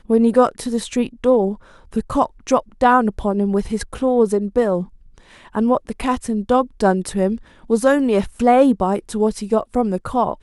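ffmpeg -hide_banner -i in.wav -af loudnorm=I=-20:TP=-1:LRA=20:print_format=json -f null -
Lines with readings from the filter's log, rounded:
"input_i" : "-18.6",
"input_tp" : "-1.3",
"input_lra" : "2.2",
"input_thresh" : "-28.8",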